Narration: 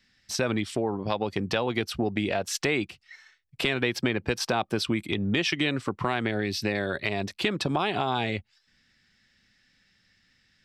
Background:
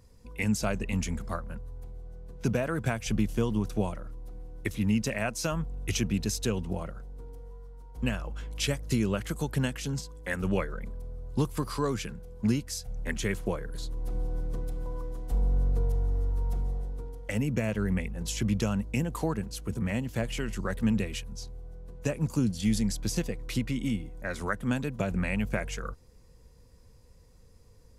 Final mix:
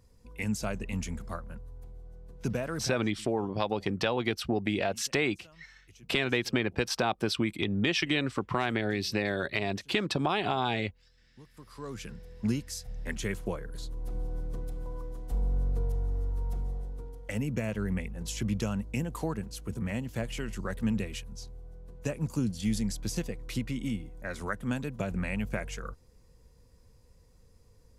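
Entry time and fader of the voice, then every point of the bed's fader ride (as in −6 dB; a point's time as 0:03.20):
2.50 s, −2.0 dB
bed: 0:02.80 −4 dB
0:03.07 −27 dB
0:11.39 −27 dB
0:12.12 −3 dB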